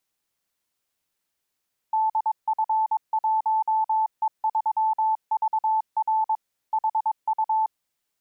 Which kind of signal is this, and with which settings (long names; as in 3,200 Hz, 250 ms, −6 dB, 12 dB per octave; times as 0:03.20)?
Morse code "DF1E3VR HU" 22 words per minute 876 Hz −19 dBFS